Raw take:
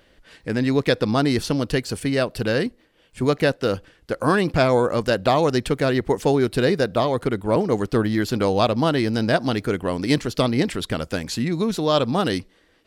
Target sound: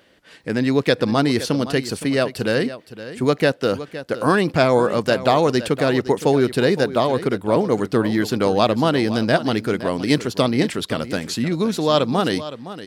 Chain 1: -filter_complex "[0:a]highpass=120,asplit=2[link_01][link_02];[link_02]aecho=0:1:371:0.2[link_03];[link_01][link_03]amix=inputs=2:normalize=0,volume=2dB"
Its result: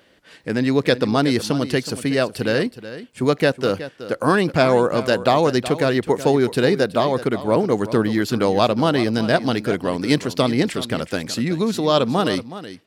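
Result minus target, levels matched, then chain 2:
echo 144 ms early
-filter_complex "[0:a]highpass=120,asplit=2[link_01][link_02];[link_02]aecho=0:1:515:0.2[link_03];[link_01][link_03]amix=inputs=2:normalize=0,volume=2dB"

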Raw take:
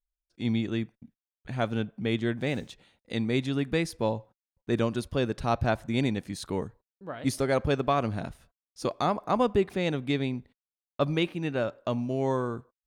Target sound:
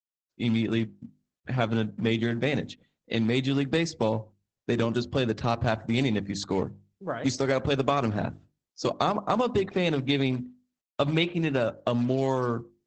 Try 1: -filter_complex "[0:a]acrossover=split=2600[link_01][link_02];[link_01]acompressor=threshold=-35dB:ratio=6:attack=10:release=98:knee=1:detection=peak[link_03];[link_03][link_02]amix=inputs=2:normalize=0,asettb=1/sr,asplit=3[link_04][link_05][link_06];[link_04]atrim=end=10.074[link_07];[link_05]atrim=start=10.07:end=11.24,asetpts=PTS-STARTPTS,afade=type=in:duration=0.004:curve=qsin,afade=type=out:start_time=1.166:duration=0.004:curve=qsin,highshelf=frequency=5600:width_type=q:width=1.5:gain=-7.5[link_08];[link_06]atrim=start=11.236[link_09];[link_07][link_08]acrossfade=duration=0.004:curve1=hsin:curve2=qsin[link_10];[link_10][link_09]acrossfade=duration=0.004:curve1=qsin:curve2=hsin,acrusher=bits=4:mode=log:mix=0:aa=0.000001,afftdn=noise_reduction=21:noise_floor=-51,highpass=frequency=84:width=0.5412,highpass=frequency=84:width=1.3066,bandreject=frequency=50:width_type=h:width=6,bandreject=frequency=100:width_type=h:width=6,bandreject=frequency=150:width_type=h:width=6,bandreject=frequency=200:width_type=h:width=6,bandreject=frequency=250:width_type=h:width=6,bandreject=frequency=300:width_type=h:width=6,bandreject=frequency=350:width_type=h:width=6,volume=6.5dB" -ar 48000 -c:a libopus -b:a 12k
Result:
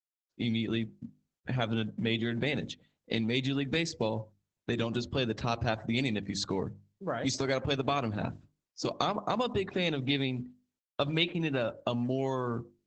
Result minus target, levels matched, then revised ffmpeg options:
downward compressor: peak gain reduction +6 dB
-filter_complex "[0:a]acrossover=split=2600[link_01][link_02];[link_01]acompressor=threshold=-28dB:ratio=6:attack=10:release=98:knee=1:detection=peak[link_03];[link_03][link_02]amix=inputs=2:normalize=0,asettb=1/sr,asplit=3[link_04][link_05][link_06];[link_04]atrim=end=10.074[link_07];[link_05]atrim=start=10.07:end=11.24,asetpts=PTS-STARTPTS,afade=type=in:duration=0.004:curve=qsin,afade=type=out:start_time=1.166:duration=0.004:curve=qsin,highshelf=frequency=5600:width_type=q:width=1.5:gain=-7.5[link_08];[link_06]atrim=start=11.236[link_09];[link_07][link_08]acrossfade=duration=0.004:curve1=hsin:curve2=qsin[link_10];[link_10][link_09]acrossfade=duration=0.004:curve1=qsin:curve2=hsin,acrusher=bits=4:mode=log:mix=0:aa=0.000001,afftdn=noise_reduction=21:noise_floor=-51,highpass=frequency=84:width=0.5412,highpass=frequency=84:width=1.3066,bandreject=frequency=50:width_type=h:width=6,bandreject=frequency=100:width_type=h:width=6,bandreject=frequency=150:width_type=h:width=6,bandreject=frequency=200:width_type=h:width=6,bandreject=frequency=250:width_type=h:width=6,bandreject=frequency=300:width_type=h:width=6,bandreject=frequency=350:width_type=h:width=6,volume=6.5dB" -ar 48000 -c:a libopus -b:a 12k

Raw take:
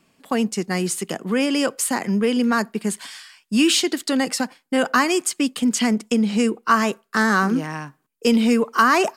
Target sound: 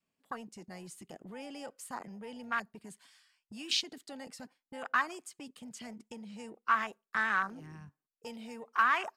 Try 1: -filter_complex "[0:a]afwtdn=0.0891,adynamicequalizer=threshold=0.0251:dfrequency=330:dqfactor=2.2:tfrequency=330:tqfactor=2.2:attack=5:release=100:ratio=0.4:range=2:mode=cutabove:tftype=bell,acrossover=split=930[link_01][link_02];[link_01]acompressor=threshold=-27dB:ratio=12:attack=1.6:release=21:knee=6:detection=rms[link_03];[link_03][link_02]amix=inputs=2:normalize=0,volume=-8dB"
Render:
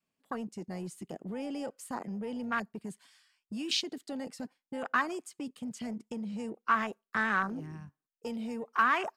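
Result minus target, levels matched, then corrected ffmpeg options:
downward compressor: peak gain reduction −9.5 dB
-filter_complex "[0:a]afwtdn=0.0891,adynamicequalizer=threshold=0.0251:dfrequency=330:dqfactor=2.2:tfrequency=330:tqfactor=2.2:attack=5:release=100:ratio=0.4:range=2:mode=cutabove:tftype=bell,acrossover=split=930[link_01][link_02];[link_01]acompressor=threshold=-37.5dB:ratio=12:attack=1.6:release=21:knee=6:detection=rms[link_03];[link_03][link_02]amix=inputs=2:normalize=0,volume=-8dB"

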